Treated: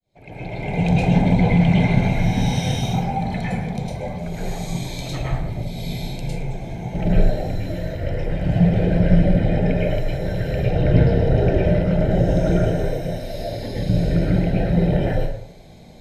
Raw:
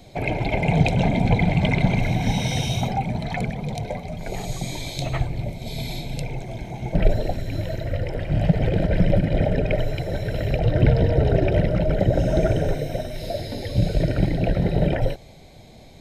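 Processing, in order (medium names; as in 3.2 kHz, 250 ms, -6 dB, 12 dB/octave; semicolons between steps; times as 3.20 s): fade-in on the opening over 1.00 s; plate-style reverb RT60 0.7 s, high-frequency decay 0.5×, pre-delay 95 ms, DRR -6.5 dB; trim -6.5 dB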